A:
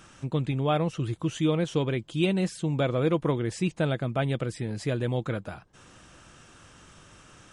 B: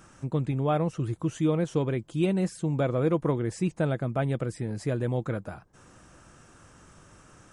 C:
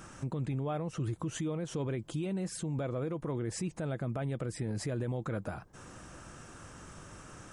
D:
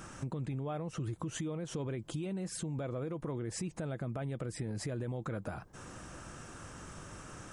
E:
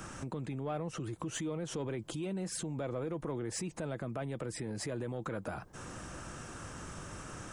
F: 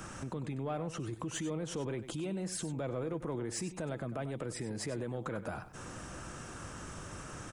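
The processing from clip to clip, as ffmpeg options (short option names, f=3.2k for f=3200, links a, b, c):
-af "equalizer=f=3.3k:w=1.1:g=-9.5"
-af "acompressor=threshold=-26dB:ratio=6,alimiter=level_in=7.5dB:limit=-24dB:level=0:latency=1:release=94,volume=-7.5dB,volume=4dB"
-af "acompressor=threshold=-37dB:ratio=3,volume=1.5dB"
-filter_complex "[0:a]acrossover=split=210|960[a][b][c];[a]alimiter=level_in=18dB:limit=-24dB:level=0:latency=1:release=334,volume=-18dB[d];[d][b][c]amix=inputs=3:normalize=0,asoftclip=type=tanh:threshold=-29.5dB,volume=3dB"
-af "aecho=1:1:97:0.224"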